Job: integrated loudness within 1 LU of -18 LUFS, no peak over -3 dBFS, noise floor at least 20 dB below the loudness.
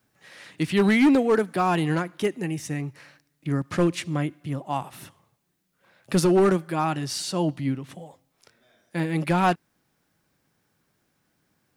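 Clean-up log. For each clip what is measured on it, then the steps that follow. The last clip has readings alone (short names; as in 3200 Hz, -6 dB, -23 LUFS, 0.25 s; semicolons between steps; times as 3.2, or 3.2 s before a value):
clipped 0.6%; flat tops at -13.5 dBFS; loudness -24.5 LUFS; peak -13.5 dBFS; loudness target -18.0 LUFS
-> clip repair -13.5 dBFS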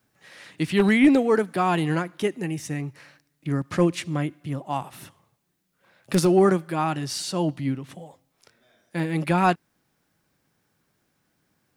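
clipped 0.0%; loudness -24.0 LUFS; peak -4.5 dBFS; loudness target -18.0 LUFS
-> gain +6 dB; limiter -3 dBFS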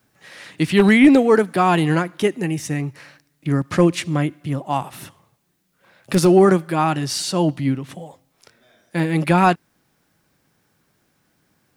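loudness -18.0 LUFS; peak -3.0 dBFS; noise floor -67 dBFS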